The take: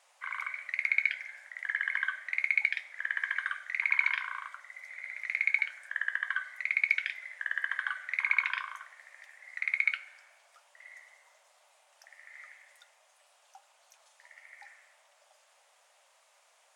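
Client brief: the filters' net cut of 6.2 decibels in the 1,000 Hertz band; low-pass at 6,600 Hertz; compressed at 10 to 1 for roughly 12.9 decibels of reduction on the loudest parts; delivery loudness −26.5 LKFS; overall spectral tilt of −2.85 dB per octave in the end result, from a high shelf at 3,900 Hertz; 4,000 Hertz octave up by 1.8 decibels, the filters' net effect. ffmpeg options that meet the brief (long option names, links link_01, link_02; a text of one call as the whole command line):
ffmpeg -i in.wav -af "lowpass=6600,equalizer=frequency=1000:width_type=o:gain=-8,highshelf=frequency=3900:gain=-3.5,equalizer=frequency=4000:width_type=o:gain=5.5,acompressor=threshold=-36dB:ratio=10,volume=15.5dB" out.wav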